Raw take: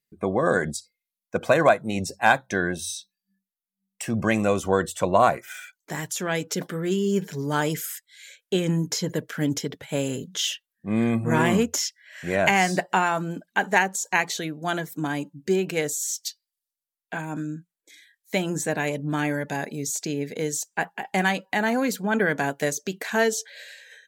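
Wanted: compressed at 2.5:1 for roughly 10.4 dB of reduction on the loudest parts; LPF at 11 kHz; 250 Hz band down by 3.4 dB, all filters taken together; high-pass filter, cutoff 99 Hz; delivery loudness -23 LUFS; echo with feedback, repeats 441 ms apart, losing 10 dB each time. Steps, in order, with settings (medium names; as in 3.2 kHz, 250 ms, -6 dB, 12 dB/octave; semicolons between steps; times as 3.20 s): high-pass 99 Hz; low-pass 11 kHz; peaking EQ 250 Hz -4.5 dB; compression 2.5:1, threshold -29 dBFS; feedback delay 441 ms, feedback 32%, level -10 dB; trim +9 dB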